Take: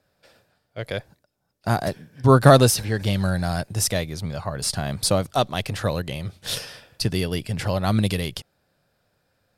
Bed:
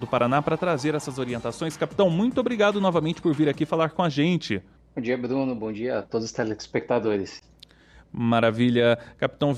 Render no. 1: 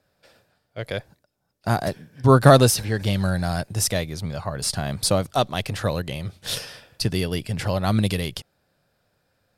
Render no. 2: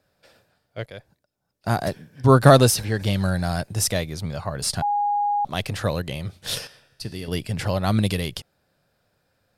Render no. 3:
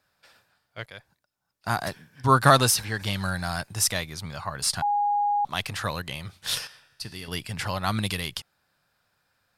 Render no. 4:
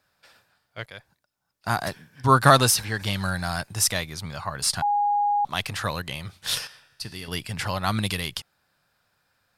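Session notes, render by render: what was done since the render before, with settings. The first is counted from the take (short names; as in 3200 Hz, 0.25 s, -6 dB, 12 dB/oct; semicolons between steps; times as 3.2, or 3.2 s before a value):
nothing audible
0.86–1.83 fade in, from -13.5 dB; 4.82–5.45 bleep 822 Hz -19 dBFS; 6.67–7.28 resonator 69 Hz, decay 1.9 s, mix 70%
resonant low shelf 750 Hz -7.5 dB, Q 1.5
gain +1.5 dB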